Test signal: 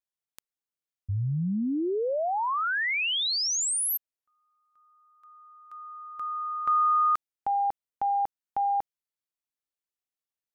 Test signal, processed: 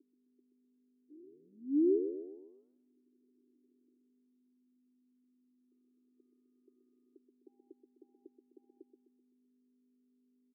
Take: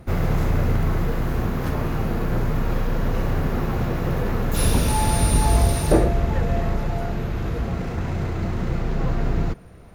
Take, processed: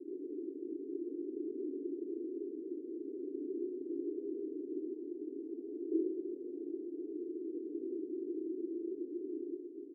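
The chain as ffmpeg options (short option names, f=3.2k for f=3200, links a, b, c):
-af "areverse,acompressor=threshold=-36dB:ratio=4:attack=0.41:release=24:knee=1:detection=rms,areverse,aeval=exprs='val(0)+0.00251*(sin(2*PI*50*n/s)+sin(2*PI*2*50*n/s)/2+sin(2*PI*3*50*n/s)/3+sin(2*PI*4*50*n/s)/4+sin(2*PI*5*50*n/s)/5)':c=same,acrusher=bits=7:mode=log:mix=0:aa=0.000001,asuperpass=centerf=340:order=8:qfactor=2.7,aecho=1:1:128|256|384|512|640:0.376|0.18|0.0866|0.0416|0.02,volume=9dB"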